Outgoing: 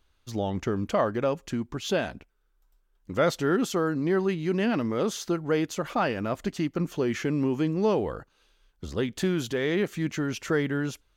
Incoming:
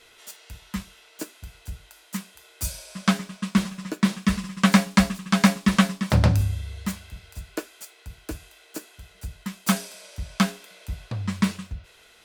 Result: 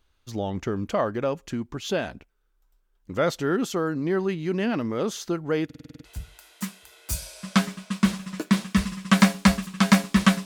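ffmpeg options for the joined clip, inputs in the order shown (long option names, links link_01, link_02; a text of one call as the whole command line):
ffmpeg -i cue0.wav -i cue1.wav -filter_complex "[0:a]apad=whole_dur=10.45,atrim=end=10.45,asplit=8[link_01][link_02][link_03][link_04][link_05][link_06][link_07][link_08];[link_01]atrim=end=5.702[link_09];[link_02]atrim=start=5.648:end=5.702[link_10];[link_03]atrim=start=5.648:end=5.702[link_11];[link_04]atrim=start=5.648:end=5.702[link_12];[link_05]atrim=start=5.648:end=5.702[link_13];[link_06]atrim=start=5.648:end=5.702[link_14];[link_07]atrim=start=5.648:end=5.702[link_15];[link_08]atrim=start=5.648:end=5.702[link_16];[1:a]atrim=start=1.568:end=5.97[link_17];[link_09][link_10]acrossfade=duration=0.004:curve1=hsin:curve2=hsin[link_18];[link_18][link_11]acrossfade=duration=0.004:curve1=hsin:curve2=hsin[link_19];[link_19][link_12]acrossfade=duration=0.004:curve1=hsin:curve2=hsin[link_20];[link_20][link_13]acrossfade=duration=0.004:curve1=hsin:curve2=hsin[link_21];[link_21][link_14]acrossfade=duration=0.004:curve1=hsin:curve2=hsin[link_22];[link_22][link_15]acrossfade=duration=0.004:curve1=hsin:curve2=hsin[link_23];[link_23][link_16]acrossfade=duration=0.004:curve1=hsin:curve2=hsin[link_24];[link_24][link_17]acrossfade=duration=0.004:curve1=hsin:curve2=hsin" out.wav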